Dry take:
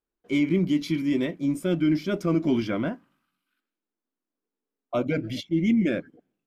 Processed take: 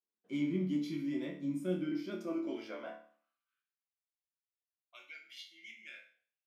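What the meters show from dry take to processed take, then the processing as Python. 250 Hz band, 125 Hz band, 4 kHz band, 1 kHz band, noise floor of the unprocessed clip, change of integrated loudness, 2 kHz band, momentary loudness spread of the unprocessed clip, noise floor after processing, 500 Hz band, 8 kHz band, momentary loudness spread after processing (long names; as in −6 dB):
−13.5 dB, −14.5 dB, −12.5 dB, −14.5 dB, below −85 dBFS, −12.0 dB, −13.5 dB, 7 LU, below −85 dBFS, −13.5 dB, can't be measured, 17 LU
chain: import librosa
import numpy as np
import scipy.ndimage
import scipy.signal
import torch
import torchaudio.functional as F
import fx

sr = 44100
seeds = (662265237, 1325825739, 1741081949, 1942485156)

y = fx.filter_sweep_highpass(x, sr, from_hz=160.0, to_hz=2200.0, start_s=1.6, end_s=4.06, q=1.4)
y = fx.resonator_bank(y, sr, root=38, chord='major', decay_s=0.47)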